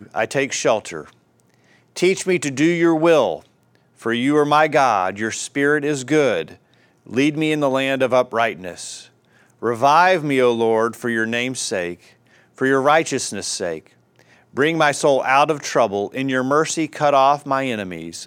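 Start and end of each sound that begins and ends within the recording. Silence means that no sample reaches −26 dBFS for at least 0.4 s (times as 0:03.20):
0:01.97–0:03.37
0:04.06–0:06.51
0:07.10–0:08.97
0:09.63–0:11.94
0:12.58–0:13.79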